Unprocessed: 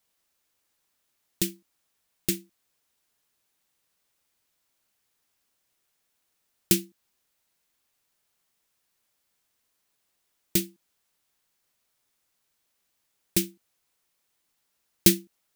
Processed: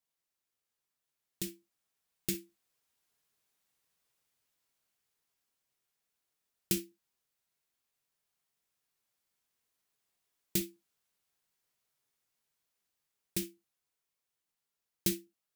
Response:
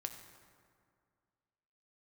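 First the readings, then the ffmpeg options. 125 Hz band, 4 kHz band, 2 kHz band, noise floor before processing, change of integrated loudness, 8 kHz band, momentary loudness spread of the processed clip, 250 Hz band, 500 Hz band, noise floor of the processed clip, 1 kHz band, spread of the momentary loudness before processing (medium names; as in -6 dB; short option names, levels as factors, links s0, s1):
-10.0 dB, -10.5 dB, -10.0 dB, -76 dBFS, -10.5 dB, -10.0 dB, 9 LU, -10.0 dB, -10.0 dB, under -85 dBFS, -10.0 dB, 12 LU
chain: -filter_complex "[0:a]dynaudnorm=f=630:g=7:m=3.76[s0];[1:a]atrim=start_sample=2205,atrim=end_sample=3528,asetrate=52920,aresample=44100[s1];[s0][s1]afir=irnorm=-1:irlink=0,volume=0.376"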